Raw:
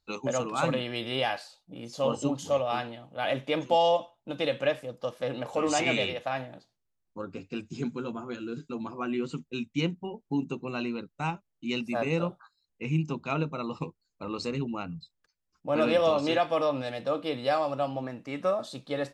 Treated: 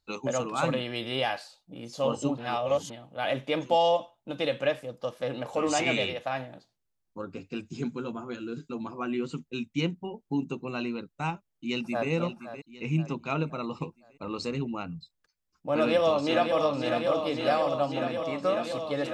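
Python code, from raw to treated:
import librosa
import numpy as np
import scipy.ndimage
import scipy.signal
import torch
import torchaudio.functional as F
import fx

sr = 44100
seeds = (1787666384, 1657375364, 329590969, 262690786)

y = fx.echo_throw(x, sr, start_s=11.32, length_s=0.77, ms=520, feedback_pct=50, wet_db=-11.5)
y = fx.echo_throw(y, sr, start_s=15.75, length_s=0.84, ms=550, feedback_pct=85, wet_db=-6.0)
y = fx.edit(y, sr, fx.reverse_span(start_s=2.38, length_s=0.52), tone=tone)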